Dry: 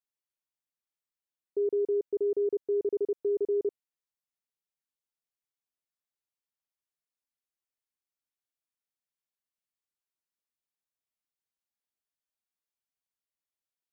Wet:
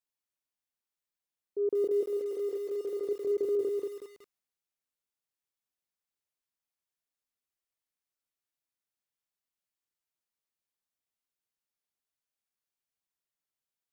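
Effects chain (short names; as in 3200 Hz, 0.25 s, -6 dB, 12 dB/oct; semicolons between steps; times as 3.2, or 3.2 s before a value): 1.84–3.06 Bessel high-pass 480 Hz, order 6; transient shaper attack -5 dB, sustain +3 dB; lo-fi delay 0.185 s, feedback 35%, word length 9-bit, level -3 dB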